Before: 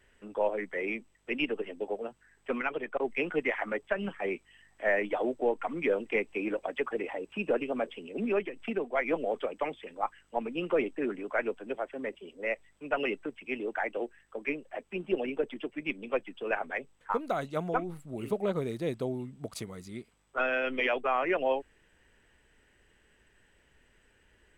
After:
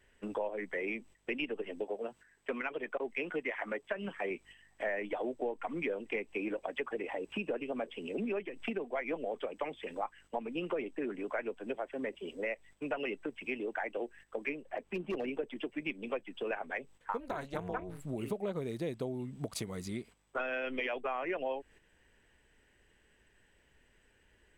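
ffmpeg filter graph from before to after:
-filter_complex "[0:a]asettb=1/sr,asplit=3[a][b][c];[a]atrim=end=1.844[d];[b]atrim=start=1.84:end=4.31,asetpts=PTS-STARTPTS,afade=t=in:d=0.004:c=qsin,afade=t=out:st=2.466:d=0.004:c=qsin,lowshelf=f=120:g=-9,bandreject=f=800:w=16[e];[c]atrim=start=4.306[f];[d][e]acrossfade=d=0.004:c1=hsin:c2=qsin[g];[g][f]acrossfade=d=0.004:c1=qsin:c2=hsin,asettb=1/sr,asplit=3[h][i][j];[h]atrim=end=14.624[k];[i]atrim=start=14.62:end=15.27,asetpts=PTS-STARTPTS,afade=t=in:d=0.004:c=qsin,afade=t=out:st=0.646:d=0.004:c=qsin,highshelf=f=2.9k:g=-7,volume=28.5dB,asoftclip=hard,volume=-28.5dB[l];[j]atrim=start=15.266[m];[k][l]acrossfade=d=0.004:c1=hsin:c2=qsin[n];[n][m]acrossfade=d=0.004:c1=qsin:c2=hsin,asettb=1/sr,asplit=3[o][p][q];[o]atrim=end=17.204[r];[p]atrim=start=17.2:end=18.01,asetpts=PTS-STARTPTS,afade=t=in:d=0.004:c=qsin,afade=t=out:st=0.806:d=0.004:c=qsin,equalizer=f=1.6k:t=o:w=1.1:g=5,tremolo=f=280:d=0.889[s];[q]atrim=start=18.006[t];[r][s]acrossfade=d=0.004:c1=hsin:c2=qsin[u];[u][t]acrossfade=d=0.004:c1=qsin:c2=hsin,agate=range=-9dB:threshold=-54dB:ratio=16:detection=peak,equalizer=f=1.3k:w=5.6:g=-3.5,acompressor=threshold=-42dB:ratio=4,volume=6.5dB"

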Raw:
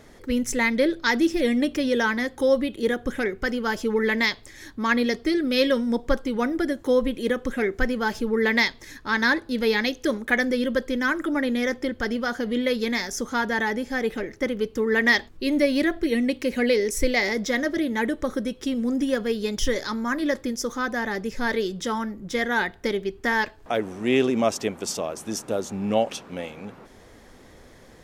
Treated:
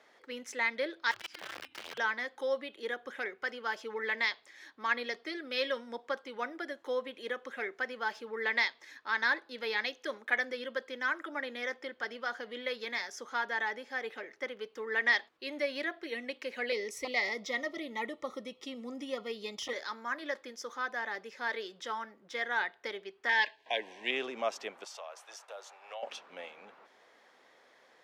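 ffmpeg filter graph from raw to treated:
-filter_complex "[0:a]asettb=1/sr,asplit=3[a][b][c];[a]atrim=end=1.114[d];[b]atrim=start=1.11:end=1.98,asetpts=PTS-STARTPTS,afade=t=in:d=0.004:c=qsin,afade=t=out:st=0.866:d=0.004:c=qsin,acompressor=threshold=-28dB:ratio=12:attack=3.2:release=140:knee=1:detection=peak,afreqshift=-340,aeval=exprs='(mod(22.4*val(0)+1,2)-1)/22.4':c=same[e];[c]atrim=start=1.976[f];[d][e]acrossfade=d=0.004:c1=hsin:c2=qsin[g];[g][f]acrossfade=d=0.004:c1=qsin:c2=hsin,asettb=1/sr,asplit=3[h][i][j];[h]atrim=end=16.724[k];[i]atrim=start=16.72:end=19.73,asetpts=PTS-STARTPTS,afade=t=in:d=0.004:c=qsin,afade=t=out:st=3.006:d=0.004:c=qsin,bass=f=250:g=10,treble=f=4k:g=2,aeval=exprs='clip(val(0),-1,0.237)':c=same,asuperstop=centerf=1600:order=20:qfactor=4.4[l];[j]atrim=start=19.726[m];[k][l]acrossfade=d=0.004:c1=hsin:c2=qsin[n];[n][m]acrossfade=d=0.004:c1=qsin:c2=hsin,asettb=1/sr,asplit=3[o][p][q];[o]atrim=end=23.294[r];[p]atrim=start=23.29:end=24.11,asetpts=PTS-STARTPTS,afade=t=in:d=0.004:c=qsin,afade=t=out:st=0.816:d=0.004:c=qsin,asuperstop=centerf=1300:order=12:qfactor=2.6,equalizer=f=3.2k:w=0.79:g=10.5[s];[q]atrim=start=24.106[t];[r][s]acrossfade=d=0.004:c1=hsin:c2=qsin[u];[u][t]acrossfade=d=0.004:c1=qsin:c2=hsin,asettb=1/sr,asplit=3[v][w][x];[v]atrim=end=24.844[y];[w]atrim=start=24.84:end=26.03,asetpts=PTS-STARTPTS,afade=t=in:d=0.004:c=qsin,afade=t=out:st=1.186:d=0.004:c=qsin,highpass=f=560:w=0.5412,highpass=f=560:w=1.3066,acompressor=threshold=-31dB:ratio=3:attack=3.2:release=140:knee=1:detection=peak,agate=range=-33dB:threshold=-46dB:ratio=3:release=100:detection=peak[z];[x]atrim=start=26.026[aa];[y][z]acrossfade=d=0.004:c1=hsin:c2=qsin[ab];[ab][aa]acrossfade=d=0.004:c1=qsin:c2=hsin,highpass=260,acrossover=split=550 4900:gain=0.178 1 0.2[ac][ad][ae];[ac][ad][ae]amix=inputs=3:normalize=0,volume=-7dB"

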